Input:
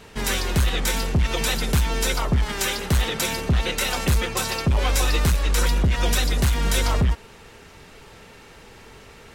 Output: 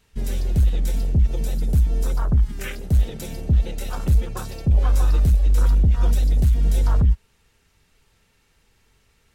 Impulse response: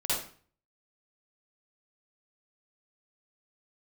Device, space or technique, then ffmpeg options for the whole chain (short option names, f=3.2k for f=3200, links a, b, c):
smiley-face EQ: -filter_complex "[0:a]afwtdn=0.0631,lowshelf=f=85:g=7,equalizer=f=540:t=o:w=2.6:g=-6.5,highshelf=f=6.9k:g=7,asettb=1/sr,asplit=3[a][b][c];[a]atrim=end=1.214[d];[b]atrim=start=1.21:end=2.94,asetpts=PTS-STARTPTS,afade=t=in:d=0.004:c=qsin,afade=t=out:st=1.726:d=0.004:c=qsin,equalizer=f=2.9k:t=o:w=1.7:g=-4[e];[c]atrim=start=2.936[f];[d][e]acrossfade=d=0.004:c1=hsin:c2=qsin[g];[g][f]acrossfade=d=0.004:c1=qsin:c2=hsin"